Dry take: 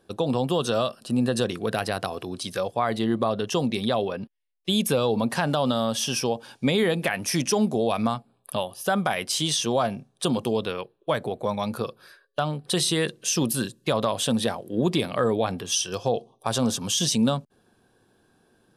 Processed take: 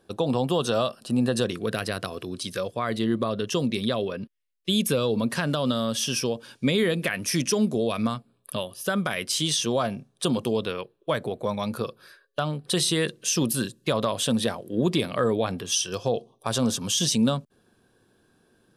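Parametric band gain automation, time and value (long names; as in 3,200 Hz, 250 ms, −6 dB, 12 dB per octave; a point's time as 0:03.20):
parametric band 800 Hz 0.47 octaves
0:01.27 0 dB
0:01.72 −12 dB
0:09.35 −12 dB
0:09.92 −5 dB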